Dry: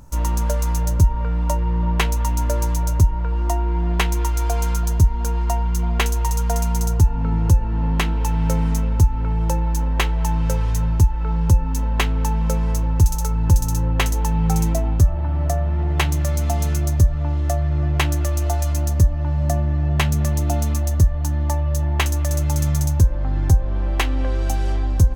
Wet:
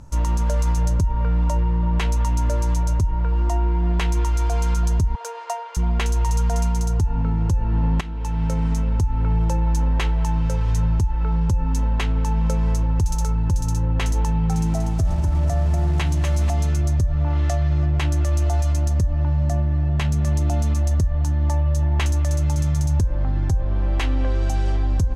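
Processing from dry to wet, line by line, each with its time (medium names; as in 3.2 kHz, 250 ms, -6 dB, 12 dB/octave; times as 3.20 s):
5.15–5.77 s: Chebyshev high-pass 440 Hz, order 6
8.01–8.75 s: fade in, from -14 dB
14.28–16.50 s: bit-crushed delay 242 ms, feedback 35%, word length 6-bit, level -7 dB
17.26–17.85 s: peaking EQ 1.2 kHz -> 11 kHz +8 dB 2.9 oct
whole clip: peaking EQ 100 Hz +4 dB 1.5 oct; peak limiter -13 dBFS; low-pass 8.4 kHz 12 dB/octave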